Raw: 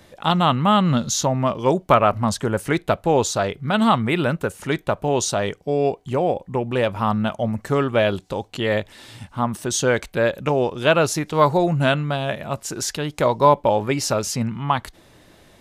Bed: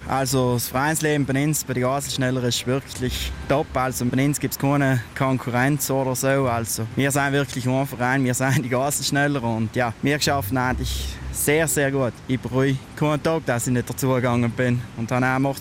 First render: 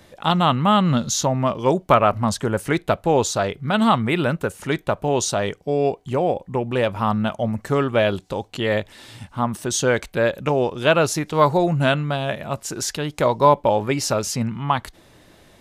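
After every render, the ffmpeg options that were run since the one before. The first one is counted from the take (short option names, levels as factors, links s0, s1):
-af anull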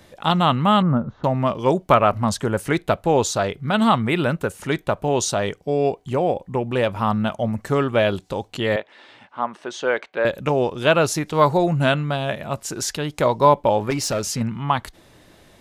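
-filter_complex "[0:a]asettb=1/sr,asplit=3[s0][s1][s2];[s0]atrim=end=0.824[s3];[s1]atrim=start=0.82:end=1.24,asetpts=PTS-STARTPTS,afade=t=in:d=0.004:c=qsin,afade=t=out:st=0.416:d=0.004:c=qsin,lowpass=f=1400:w=0.5412,lowpass=f=1400:w=1.3066[s4];[s2]atrim=start=1.236[s5];[s3][s4]acrossfade=d=0.004:c1=hsin:c2=qsin[s6];[s6][s5]acrossfade=d=0.004:c1=qsin:c2=hsin,asettb=1/sr,asplit=3[s7][s8][s9];[s7]atrim=end=8.764[s10];[s8]atrim=start=8.76:end=10.25,asetpts=PTS-STARTPTS,afade=t=in:d=0.004:c=qsin,afade=t=out:st=1.486:d=0.004:c=qsin,highpass=430,lowpass=2700[s11];[s9]atrim=start=10.246[s12];[s10][s11]acrossfade=d=0.004:c1=hsin:c2=qsin[s13];[s13][s12]acrossfade=d=0.004:c1=qsin:c2=hsin,asettb=1/sr,asplit=3[s14][s15][s16];[s14]atrim=end=13.904[s17];[s15]atrim=start=13.9:end=14.41,asetpts=PTS-STARTPTS,afade=t=in:d=0.004:c=qsin,afade=t=out:st=0.506:d=0.004:c=qsin,volume=7.94,asoftclip=hard,volume=0.126[s18];[s16]atrim=start=14.406[s19];[s17][s18]acrossfade=d=0.004:c1=hsin:c2=qsin[s20];[s20][s19]acrossfade=d=0.004:c1=qsin:c2=hsin"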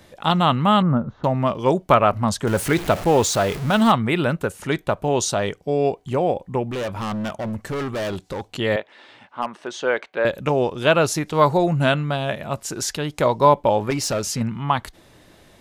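-filter_complex "[0:a]asettb=1/sr,asplit=3[s0][s1][s2];[s0]atrim=end=2.474[s3];[s1]atrim=start=2.47:end=3.92,asetpts=PTS-STARTPTS,afade=t=in:d=0.004:c=qsin,afade=t=out:st=1.446:d=0.004:c=qsin,aeval=exprs='val(0)+0.5*0.0531*sgn(val(0))':c=same[s4];[s2]atrim=start=3.916[s5];[s3][s4]acrossfade=d=0.004:c1=hsin:c2=qsin[s6];[s6][s5]acrossfade=d=0.004:c1=qsin:c2=hsin,asettb=1/sr,asplit=3[s7][s8][s9];[s7]atrim=end=6.654[s10];[s8]atrim=start=6.65:end=8.45,asetpts=PTS-STARTPTS,afade=t=in:d=0.004:c=qsin,afade=t=out:st=1.796:d=0.004:c=qsin,volume=15,asoftclip=hard,volume=0.0668[s11];[s9]atrim=start=8.446[s12];[s10][s11]acrossfade=d=0.004:c1=hsin:c2=qsin[s13];[s13][s12]acrossfade=d=0.004:c1=qsin:c2=hsin,asplit=3[s14][s15][s16];[s14]afade=t=out:st=9.41:d=0.02[s17];[s15]asoftclip=type=hard:threshold=0.141,afade=t=in:st=9.41:d=0.02,afade=t=out:st=9.82:d=0.02[s18];[s16]afade=t=in:st=9.82:d=0.02[s19];[s17][s18][s19]amix=inputs=3:normalize=0"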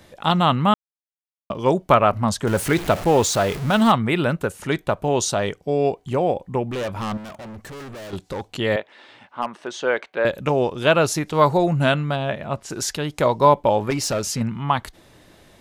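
-filter_complex "[0:a]asettb=1/sr,asplit=3[s0][s1][s2];[s0]atrim=end=7.174[s3];[s1]atrim=start=7.17:end=8.13,asetpts=PTS-STARTPTS,afade=t=in:d=0.004:c=qsin,afade=t=out:st=0.956:d=0.004:c=qsin,asoftclip=type=hard:threshold=0.0178[s4];[s2]atrim=start=8.126[s5];[s3][s4]acrossfade=d=0.004:c1=hsin:c2=qsin[s6];[s6][s5]acrossfade=d=0.004:c1=qsin:c2=hsin,asplit=3[s7][s8][s9];[s7]afade=t=out:st=12.15:d=0.02[s10];[s8]aemphasis=mode=reproduction:type=50fm,afade=t=in:st=12.15:d=0.02,afade=t=out:st=12.69:d=0.02[s11];[s9]afade=t=in:st=12.69:d=0.02[s12];[s10][s11][s12]amix=inputs=3:normalize=0,asplit=3[s13][s14][s15];[s13]atrim=end=0.74,asetpts=PTS-STARTPTS,afade=t=out:st=0.736:d=0.004:c=hsin[s16];[s14]atrim=start=0.74:end=1.5,asetpts=PTS-STARTPTS,volume=0[s17];[s15]atrim=start=1.5,asetpts=PTS-STARTPTS,afade=t=in:d=0.004:c=hsin[s18];[s16][s17][s18]concat=n=3:v=0:a=1"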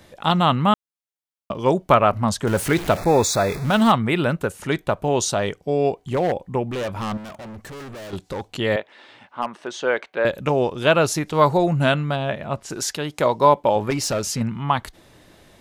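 -filter_complex "[0:a]asettb=1/sr,asplit=3[s0][s1][s2];[s0]atrim=end=2.974[s3];[s1]atrim=start=2.97:end=3.65,asetpts=PTS-STARTPTS,afade=t=in:d=0.004:c=qsin,afade=t=out:st=0.676:d=0.004:c=qsin,asuperstop=centerf=3000:order=20:qfactor=4[s4];[s2]atrim=start=3.646[s5];[s3][s4]acrossfade=d=0.004:c1=hsin:c2=qsin[s6];[s6][s5]acrossfade=d=0.004:c1=qsin:c2=hsin,asettb=1/sr,asplit=3[s7][s8][s9];[s7]atrim=end=5.994[s10];[s8]atrim=start=5.99:end=6.42,asetpts=PTS-STARTPTS,afade=t=in:d=0.004:c=qsin,afade=t=out:st=0.426:d=0.004:c=qsin,aeval=exprs='0.2*(abs(mod(val(0)/0.2+3,4)-2)-1)':c=same[s11];[s9]atrim=start=6.416[s12];[s10][s11]acrossfade=d=0.004:c1=hsin:c2=qsin[s13];[s13][s12]acrossfade=d=0.004:c1=qsin:c2=hsin,asettb=1/sr,asplit=3[s14][s15][s16];[s14]atrim=end=12.774[s17];[s15]atrim=start=12.77:end=13.76,asetpts=PTS-STARTPTS,afade=t=in:d=0.004:c=qsin,afade=t=out:st=0.986:d=0.004:c=qsin,highpass=f=160:p=1[s18];[s16]atrim=start=13.756[s19];[s17][s18]acrossfade=d=0.004:c1=hsin:c2=qsin[s20];[s20][s19]acrossfade=d=0.004:c1=qsin:c2=hsin"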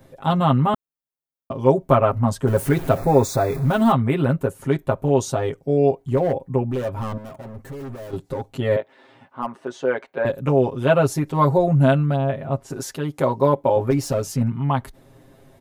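-af "equalizer=f=4000:w=0.33:g=-12.5,aecho=1:1:7.5:0.93"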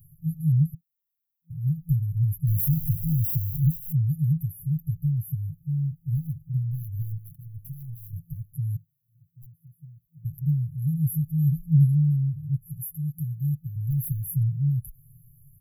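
-af "afftfilt=real='re*(1-between(b*sr/4096,170,11000))':imag='im*(1-between(b*sr/4096,170,11000))':win_size=4096:overlap=0.75,highshelf=f=4400:g=11"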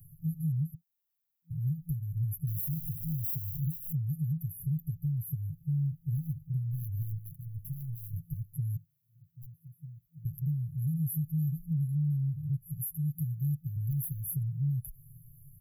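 -filter_complex "[0:a]acrossover=split=170|1200|4800[s0][s1][s2][s3];[s0]acompressor=threshold=0.0224:ratio=6[s4];[s4][s1][s2][s3]amix=inputs=4:normalize=0,alimiter=level_in=1.06:limit=0.0631:level=0:latency=1:release=308,volume=0.944"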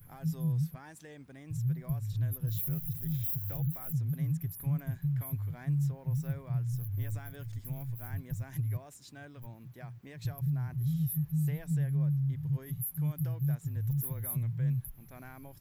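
-filter_complex "[1:a]volume=0.0335[s0];[0:a][s0]amix=inputs=2:normalize=0"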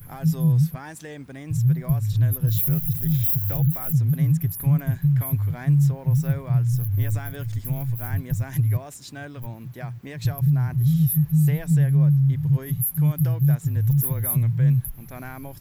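-af "volume=3.98"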